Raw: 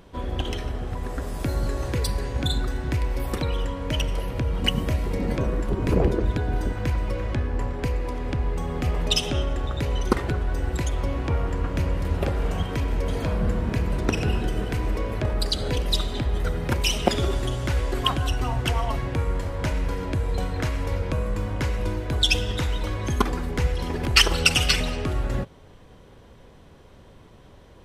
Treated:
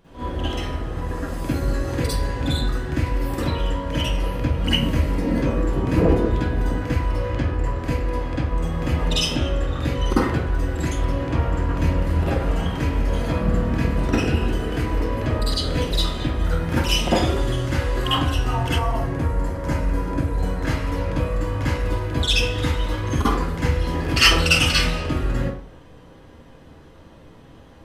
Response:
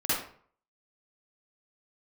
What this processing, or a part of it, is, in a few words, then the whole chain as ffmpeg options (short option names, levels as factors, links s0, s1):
bathroom: -filter_complex "[1:a]atrim=start_sample=2205[s0];[0:a][s0]afir=irnorm=-1:irlink=0,asettb=1/sr,asplit=3[s1][s2][s3];[s1]atrim=end=18.784[s4];[s2]atrim=start=18.78:end=20.65,asetpts=PTS-STARTPTS,afade=t=in:d=0.004:c=qsin,afade=t=out:st=1.866:d=0.004:c=qsin,equalizer=f=3200:w=0.93:g=-7.5[s5];[s3]atrim=start=20.646[s6];[s4][s5]acrossfade=d=0.004:c1=hsin:c2=qsin[s7];[s7][s6]acrossfade=d=0.004:c1=qsin:c2=hsin,volume=0.473"